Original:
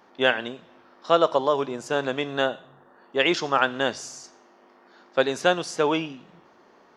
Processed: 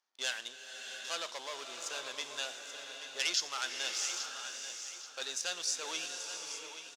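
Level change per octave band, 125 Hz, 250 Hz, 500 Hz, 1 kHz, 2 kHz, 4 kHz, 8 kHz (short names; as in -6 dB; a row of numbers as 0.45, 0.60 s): under -30 dB, -27.5 dB, -24.0 dB, -18.5 dB, -12.0 dB, -4.5 dB, +5.0 dB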